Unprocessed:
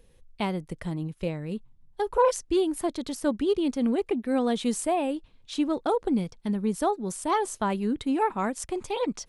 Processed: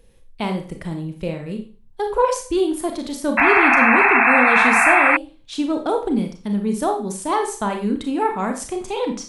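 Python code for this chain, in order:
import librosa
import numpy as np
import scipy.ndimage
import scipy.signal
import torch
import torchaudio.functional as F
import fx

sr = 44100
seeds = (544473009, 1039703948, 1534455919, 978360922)

y = fx.rev_schroeder(x, sr, rt60_s=0.38, comb_ms=28, drr_db=4.0)
y = fx.spec_paint(y, sr, seeds[0], shape='noise', start_s=3.37, length_s=1.8, low_hz=660.0, high_hz=2700.0, level_db=-18.0)
y = y * 10.0 ** (3.5 / 20.0)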